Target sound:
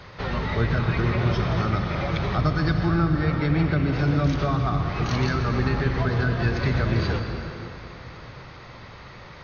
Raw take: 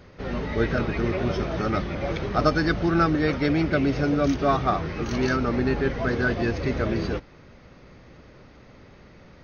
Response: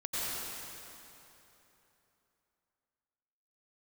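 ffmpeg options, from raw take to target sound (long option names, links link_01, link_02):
-filter_complex "[0:a]equalizer=frequency=125:width_type=o:width=1:gain=6,equalizer=frequency=250:width_type=o:width=1:gain=-5,equalizer=frequency=1000:width_type=o:width=1:gain=9,equalizer=frequency=2000:width_type=o:width=1:gain=4,equalizer=frequency=4000:width_type=o:width=1:gain=9,acrossover=split=280[link_01][link_02];[link_02]acompressor=threshold=-31dB:ratio=5[link_03];[link_01][link_03]amix=inputs=2:normalize=0,asettb=1/sr,asplit=3[link_04][link_05][link_06];[link_04]atrim=end=2.854[link_07];[link_05]atrim=start=2.85:end=3.99,asetpts=PTS-STARTPTS,afade=type=in:duration=0.004:curve=qsin,afade=type=out:start_time=1.136:duration=0.004:curve=qsin,highshelf=frequency=4500:gain=-11[link_08];[link_06]atrim=start=3.986[link_09];[link_07][link_08]acrossfade=duration=0.004:curve1=hsin:curve2=qsin[link_10];[link_10][link_09]acrossfade=duration=0.004:curve1=qsin:curve2=hsin,asplit=2[link_11][link_12];[1:a]atrim=start_sample=2205[link_13];[link_12][link_13]afir=irnorm=-1:irlink=0,volume=-9dB[link_14];[link_11][link_14]amix=inputs=2:normalize=0"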